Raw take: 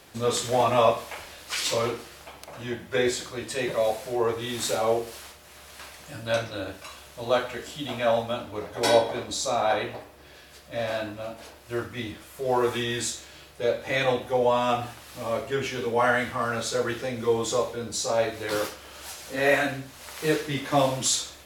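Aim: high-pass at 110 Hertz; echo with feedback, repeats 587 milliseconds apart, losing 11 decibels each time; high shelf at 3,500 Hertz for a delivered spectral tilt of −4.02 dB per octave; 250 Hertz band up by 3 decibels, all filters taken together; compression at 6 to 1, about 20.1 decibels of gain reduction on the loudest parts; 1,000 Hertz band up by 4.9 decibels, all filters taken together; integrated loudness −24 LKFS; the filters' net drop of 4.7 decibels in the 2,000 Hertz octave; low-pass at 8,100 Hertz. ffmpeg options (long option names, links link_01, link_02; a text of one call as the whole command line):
ffmpeg -i in.wav -af "highpass=110,lowpass=8100,equalizer=frequency=250:width_type=o:gain=3.5,equalizer=frequency=1000:width_type=o:gain=8.5,equalizer=frequency=2000:width_type=o:gain=-8.5,highshelf=frequency=3500:gain=-4,acompressor=threshold=-35dB:ratio=6,aecho=1:1:587|1174|1761:0.282|0.0789|0.0221,volume=14.5dB" out.wav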